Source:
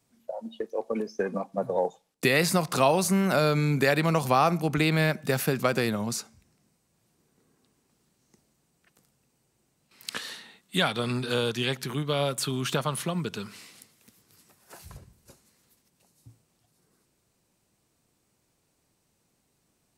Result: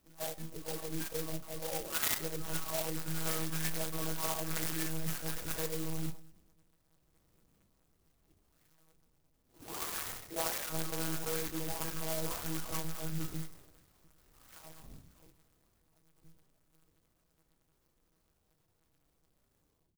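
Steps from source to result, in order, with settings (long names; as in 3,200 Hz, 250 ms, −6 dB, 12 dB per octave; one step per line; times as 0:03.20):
every frequency bin delayed by itself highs early, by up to 972 ms
reversed playback
downward compressor 16 to 1, threshold −37 dBFS, peak gain reduction 19 dB
reversed playback
far-end echo of a speakerphone 170 ms, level −28 dB
one-pitch LPC vocoder at 8 kHz 160 Hz
dynamic equaliser 2,900 Hz, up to +5 dB, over −60 dBFS, Q 2.8
harmonic and percussive parts rebalanced percussive −12 dB
decimation without filtering 11×
high-shelf EQ 2,100 Hz +11 dB
on a send at −12 dB: convolution reverb RT60 0.50 s, pre-delay 30 ms
on the sum: converter with an unsteady clock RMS 0.12 ms
level +4 dB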